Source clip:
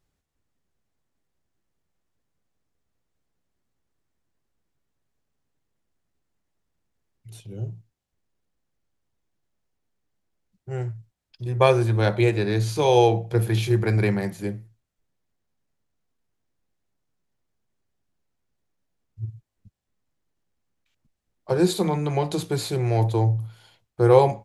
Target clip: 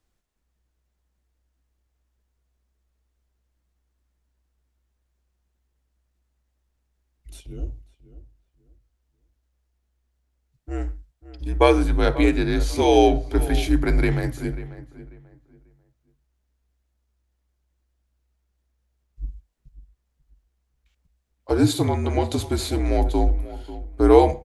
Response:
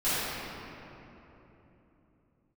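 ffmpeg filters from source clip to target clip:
-filter_complex "[0:a]asplit=2[link_01][link_02];[link_02]adelay=541,lowpass=frequency=2000:poles=1,volume=-15dB,asplit=2[link_03][link_04];[link_04]adelay=541,lowpass=frequency=2000:poles=1,volume=0.26,asplit=2[link_05][link_06];[link_06]adelay=541,lowpass=frequency=2000:poles=1,volume=0.26[link_07];[link_01][link_03][link_05][link_07]amix=inputs=4:normalize=0,afreqshift=-62,asplit=2[link_08][link_09];[1:a]atrim=start_sample=2205,atrim=end_sample=6174[link_10];[link_09][link_10]afir=irnorm=-1:irlink=0,volume=-32dB[link_11];[link_08][link_11]amix=inputs=2:normalize=0,volume=1.5dB"

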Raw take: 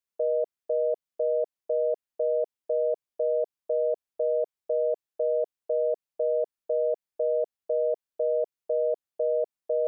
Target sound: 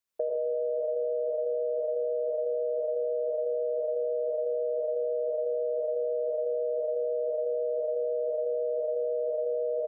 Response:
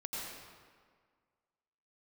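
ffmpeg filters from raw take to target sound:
-filter_complex "[0:a]aecho=1:1:158|316|474|632|790|948:0.668|0.294|0.129|0.0569|0.0251|0.011[link_01];[1:a]atrim=start_sample=2205[link_02];[link_01][link_02]afir=irnorm=-1:irlink=0,alimiter=level_in=0.5dB:limit=-24dB:level=0:latency=1:release=58,volume=-0.5dB,acompressor=threshold=-33dB:ratio=5,volume=6dB"

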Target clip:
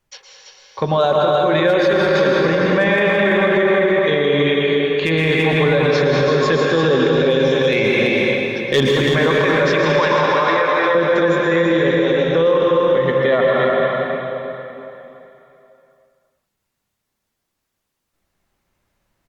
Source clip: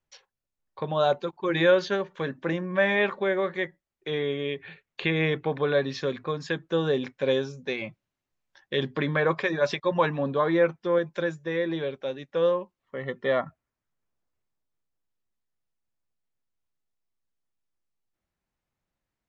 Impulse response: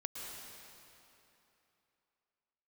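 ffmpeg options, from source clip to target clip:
-filter_complex "[0:a]asettb=1/sr,asplit=3[link_01][link_02][link_03];[link_01]atrim=end=7.724[link_04];[link_02]atrim=start=7.72:end=8.94,asetpts=PTS-STARTPTS,afade=type=in:duration=0.004:curve=qsin,afade=type=out:start_time=1.216:duration=0.004:curve=qsin,acontrast=82[link_05];[link_03]atrim=start=8.936[link_06];[link_04][link_05]acrossfade=duration=0.004:curve1=hsin:curve2=qsin[link_07];[link_07][link_06]acrossfade=duration=0.004:curve1=qsin:curve2=hsin,asettb=1/sr,asplit=3[link_08][link_09][link_10];[link_08]atrim=end=9.834[link_11];[link_09]atrim=start=9.83:end=10.95,asetpts=PTS-STARTPTS,afade=type=in:duration=0.004:curve=qsin,afade=type=out:start_time=1.116:duration=0.004:curve=qsin,highpass=800[link_12];[link_10]atrim=start=10.946[link_13];[link_11][link_12]acrossfade=duration=0.004:curve1=hsin:curve2=qsin[link_14];[link_14][link_13]acrossfade=duration=0.004:curve1=qsin:curve2=hsin,asoftclip=type=hard:threshold=-12.5dB,aecho=1:1:334:0.473[link_15];[1:a]atrim=start_sample=2205,asetrate=42336,aresample=44100[link_16];[link_15][link_16]afir=irnorm=-1:irlink=0,alimiter=level_in=22dB:limit=-1dB:release=50:level=0:latency=1,volume=-6dB" -ar 48000 -c:a libopus -b:a 48k

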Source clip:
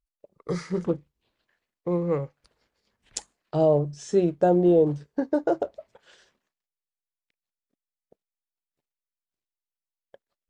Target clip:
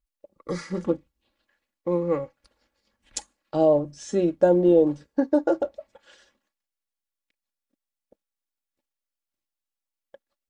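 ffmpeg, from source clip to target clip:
ffmpeg -i in.wav -af "aecho=1:1:3.6:0.62" out.wav

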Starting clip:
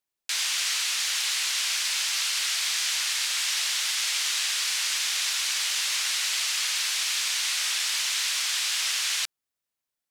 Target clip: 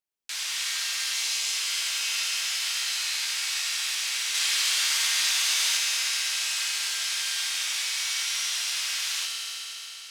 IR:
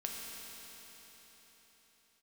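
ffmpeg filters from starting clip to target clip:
-filter_complex "[0:a]asettb=1/sr,asplit=3[link_01][link_02][link_03];[link_01]atrim=end=1.144[link_04];[link_02]atrim=start=1.14:end=1.54,asetpts=PTS-STARTPTS,afade=type=in:duration=0.004:curve=qsin,afade=type=out:start_time=0.396:duration=0.004:curve=qsin,equalizer=frequency=400:width_type=o:width=0.67:gain=6,equalizer=frequency=1600:width_type=o:width=0.67:gain=-9,equalizer=frequency=6300:width_type=o:width=0.67:gain=4[link_05];[link_03]atrim=start=1.536[link_06];[link_04][link_05]acrossfade=duration=0.004:curve1=hsin:curve2=qsin[link_07];[link_07][link_06]acrossfade=duration=0.004:curve1=qsin:curve2=hsin,asettb=1/sr,asplit=3[link_08][link_09][link_10];[link_08]atrim=end=4.344[link_11];[link_09]atrim=start=4.34:end=5.77,asetpts=PTS-STARTPTS,afade=type=in:duration=0.004:curve=qsin,afade=type=out:start_time=1.426:duration=0.004:curve=qsin,acontrast=24[link_12];[link_10]atrim=start=5.766[link_13];[link_11][link_12]acrossfade=duration=0.004:curve1=hsin:curve2=qsin[link_14];[link_14][link_13]acrossfade=duration=0.004:curve1=qsin:curve2=hsin[link_15];[1:a]atrim=start_sample=2205[link_16];[link_15][link_16]afir=irnorm=-1:irlink=0,volume=-3.5dB"

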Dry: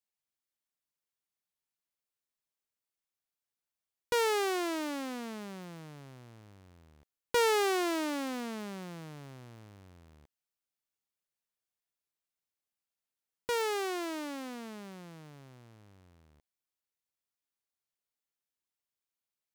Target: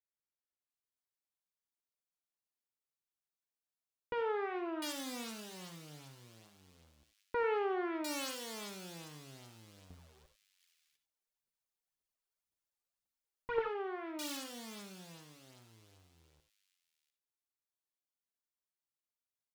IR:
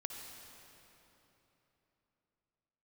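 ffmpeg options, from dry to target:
-filter_complex "[0:a]asettb=1/sr,asplit=3[link_01][link_02][link_03];[link_01]atrim=end=9.904[link_04];[link_02]atrim=start=9.9:end=13.67,asetpts=PTS-STARTPTS,afade=type=in:duration=0.004:curve=qsin,afade=type=out:start_time=3.766:duration=0.004:curve=qsin,aphaser=in_gain=1:out_gain=1:delay=2.7:decay=0.77:speed=1.9:type=triangular[link_05];[link_03]atrim=start=13.666[link_06];[link_04][link_05]acrossfade=duration=0.004:curve1=hsin:curve2=qsin[link_07];[link_07][link_06]acrossfade=duration=0.004:curve1=qsin:curve2=hsin,acrusher=bits=3:mode=log:mix=0:aa=0.000001,flanger=delay=2:depth=7.3:regen=-53:speed=0.12:shape=sinusoidal,acrossover=split=2400[link_08][link_09];[link_09]adelay=700[link_10];[link_08][link_10]amix=inputs=2:normalize=0[link_11];[1:a]atrim=start_sample=2205,atrim=end_sample=4410[link_12];[link_11][link_12]afir=irnorm=-1:irlink=0,volume=1dB"

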